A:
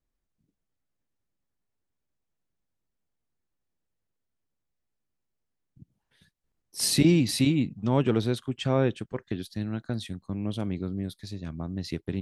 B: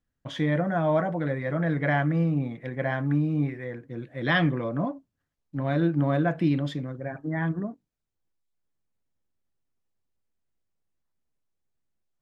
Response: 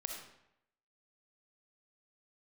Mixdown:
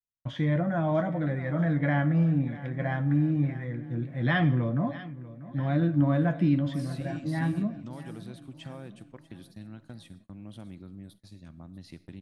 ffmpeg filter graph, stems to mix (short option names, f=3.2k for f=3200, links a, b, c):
-filter_complex "[0:a]equalizer=f=10k:t=o:w=0.79:g=10,acompressor=threshold=-26dB:ratio=4,volume=-13dB,asplit=3[a][b][c];[b]volume=-11.5dB[d];[c]volume=-19.5dB[e];[1:a]equalizer=f=100:w=0.44:g=8.5,flanger=delay=8.3:depth=2.4:regen=51:speed=0.23:shape=sinusoidal,volume=-1.5dB,asplit=3[f][g][h];[g]volume=-12dB[i];[h]volume=-15.5dB[j];[2:a]atrim=start_sample=2205[k];[d][i]amix=inputs=2:normalize=0[l];[l][k]afir=irnorm=-1:irlink=0[m];[e][j]amix=inputs=2:normalize=0,aecho=0:1:641|1282|1923|2564|3205|3846|4487:1|0.5|0.25|0.125|0.0625|0.0312|0.0156[n];[a][f][m][n]amix=inputs=4:normalize=0,acrossover=split=4000[o][p];[p]acompressor=threshold=-57dB:ratio=4:attack=1:release=60[q];[o][q]amix=inputs=2:normalize=0,agate=range=-27dB:threshold=-52dB:ratio=16:detection=peak,equalizer=f=420:w=4.3:g=-8"